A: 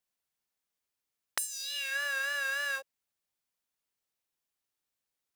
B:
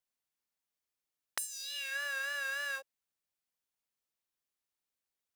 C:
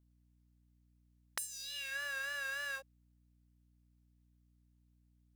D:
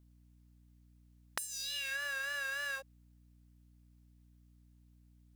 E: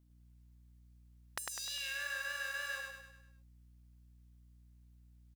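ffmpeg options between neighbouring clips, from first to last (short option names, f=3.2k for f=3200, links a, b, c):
-af "bandreject=f=60:t=h:w=6,bandreject=f=120:t=h:w=6,bandreject=f=180:t=h:w=6,volume=-4dB"
-af "aeval=exprs='val(0)+0.000501*(sin(2*PI*60*n/s)+sin(2*PI*2*60*n/s)/2+sin(2*PI*3*60*n/s)/3+sin(2*PI*4*60*n/s)/4+sin(2*PI*5*60*n/s)/5)':c=same,volume=-3dB"
-af "acompressor=threshold=-42dB:ratio=6,volume=7dB"
-af "aecho=1:1:101|202|303|404|505|606:0.708|0.347|0.17|0.0833|0.0408|0.02,volume=-3.5dB"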